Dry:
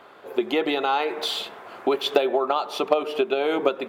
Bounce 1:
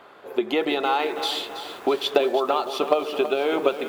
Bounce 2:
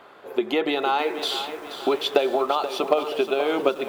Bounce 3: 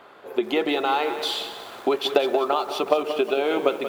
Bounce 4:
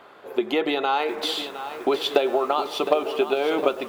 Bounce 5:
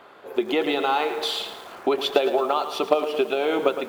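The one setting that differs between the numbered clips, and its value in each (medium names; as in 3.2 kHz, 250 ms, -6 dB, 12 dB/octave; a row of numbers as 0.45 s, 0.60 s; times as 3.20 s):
bit-crushed delay, time: 327 ms, 479 ms, 183 ms, 712 ms, 111 ms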